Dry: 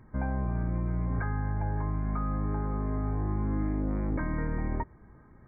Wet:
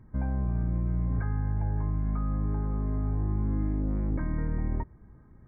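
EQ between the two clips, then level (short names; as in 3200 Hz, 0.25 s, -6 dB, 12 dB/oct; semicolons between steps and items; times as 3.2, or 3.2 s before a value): low shelf 320 Hz +10 dB; -7.0 dB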